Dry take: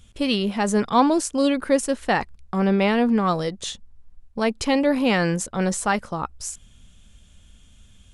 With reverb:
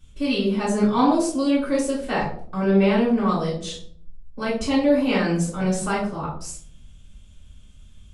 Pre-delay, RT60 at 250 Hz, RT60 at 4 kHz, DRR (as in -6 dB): 3 ms, 0.85 s, 0.35 s, -9.0 dB